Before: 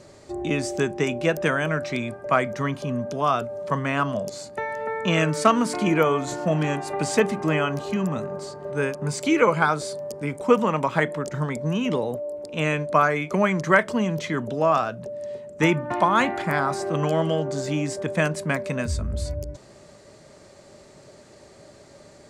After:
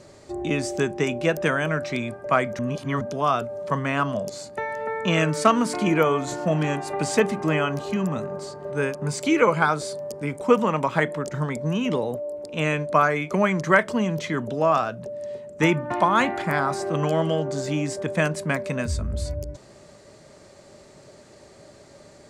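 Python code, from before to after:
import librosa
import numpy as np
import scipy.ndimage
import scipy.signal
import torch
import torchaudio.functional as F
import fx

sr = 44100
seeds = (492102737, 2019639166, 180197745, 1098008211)

y = fx.edit(x, sr, fx.reverse_span(start_s=2.59, length_s=0.42), tone=tone)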